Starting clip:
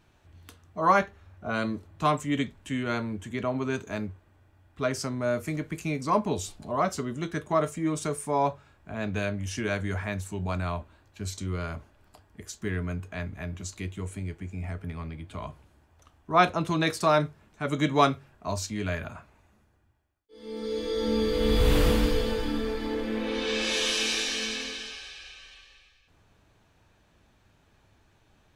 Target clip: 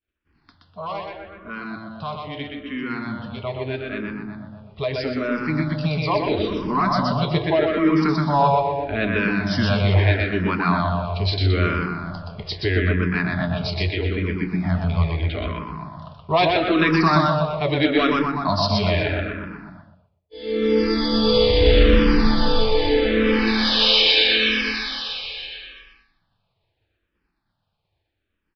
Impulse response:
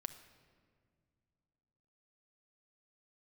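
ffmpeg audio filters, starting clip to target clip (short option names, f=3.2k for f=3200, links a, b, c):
-filter_complex "[0:a]aresample=11025,asoftclip=type=tanh:threshold=-16dB,aresample=44100,alimiter=limit=-23dB:level=0:latency=1:release=319,highshelf=f=2.7k:g=7,asplit=2[a][b];[b]adelay=247,lowpass=f=1.6k:p=1,volume=-5.5dB,asplit=2[c][d];[d]adelay=247,lowpass=f=1.6k:p=1,volume=0.44,asplit=2[e][f];[f]adelay=247,lowpass=f=1.6k:p=1,volume=0.44,asplit=2[g][h];[h]adelay=247,lowpass=f=1.6k:p=1,volume=0.44,asplit=2[i][j];[j]adelay=247,lowpass=f=1.6k:p=1,volume=0.44[k];[a][c][e][g][i][k]amix=inputs=6:normalize=0,agate=range=-33dB:threshold=-49dB:ratio=3:detection=peak,dynaudnorm=f=480:g=21:m=14dB,asplit=2[l][m];[1:a]atrim=start_sample=2205,atrim=end_sample=6174,adelay=123[n];[m][n]afir=irnorm=-1:irlink=0,volume=0.5dB[o];[l][o]amix=inputs=2:normalize=0,asplit=2[p][q];[q]afreqshift=-0.78[r];[p][r]amix=inputs=2:normalize=1"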